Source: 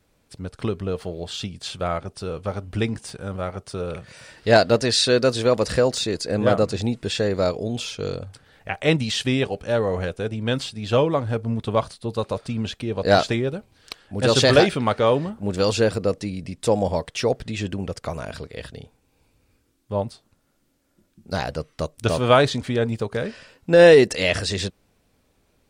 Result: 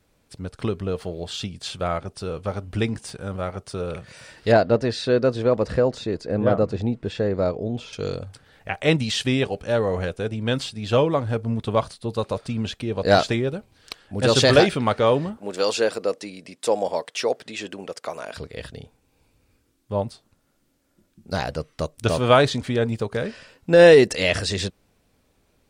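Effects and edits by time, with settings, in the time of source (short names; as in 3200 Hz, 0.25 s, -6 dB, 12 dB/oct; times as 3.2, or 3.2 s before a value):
4.52–7.93 LPF 1100 Hz 6 dB/oct
15.37–18.37 HPF 370 Hz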